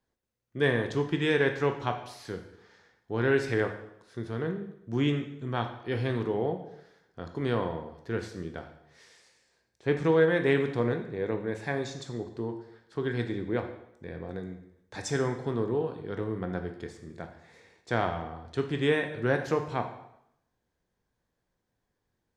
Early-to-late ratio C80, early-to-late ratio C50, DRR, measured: 11.5 dB, 8.5 dB, 5.0 dB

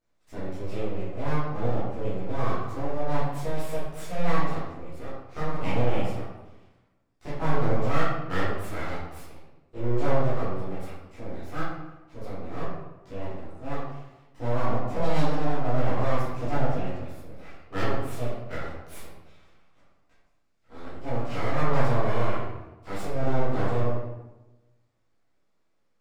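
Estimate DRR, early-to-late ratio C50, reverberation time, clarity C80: -12.5 dB, -1.0 dB, 1.0 s, 2.5 dB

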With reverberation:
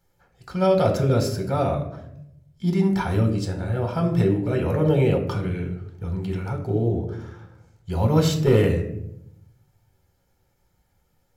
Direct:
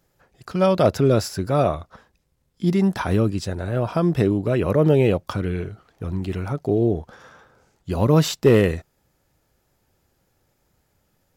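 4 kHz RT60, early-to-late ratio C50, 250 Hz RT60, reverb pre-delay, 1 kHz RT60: 0.45 s, 8.5 dB, 1.2 s, 5 ms, 0.65 s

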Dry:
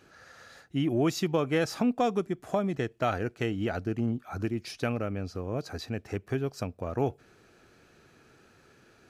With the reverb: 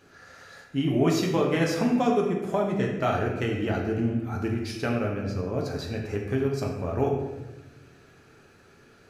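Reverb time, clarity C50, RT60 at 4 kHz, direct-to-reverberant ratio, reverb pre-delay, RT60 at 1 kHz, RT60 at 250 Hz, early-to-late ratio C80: 1.1 s, 3.5 dB, 0.80 s, -1.5 dB, 5 ms, 1.0 s, 1.5 s, 5.5 dB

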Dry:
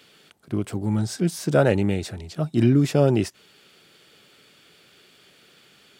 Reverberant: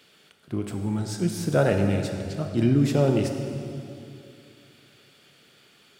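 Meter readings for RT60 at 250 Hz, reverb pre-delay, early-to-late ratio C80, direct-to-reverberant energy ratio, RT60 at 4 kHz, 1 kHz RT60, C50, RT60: 2.8 s, 19 ms, 6.5 dB, 4.0 dB, 2.2 s, 2.5 s, 5.0 dB, 2.6 s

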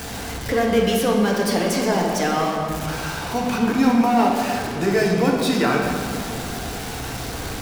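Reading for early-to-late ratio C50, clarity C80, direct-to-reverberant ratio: 1.5 dB, 3.0 dB, -1.5 dB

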